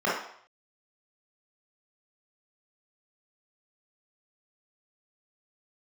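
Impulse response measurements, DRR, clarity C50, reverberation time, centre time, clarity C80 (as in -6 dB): -8.0 dB, 1.5 dB, 0.65 s, 54 ms, 6.5 dB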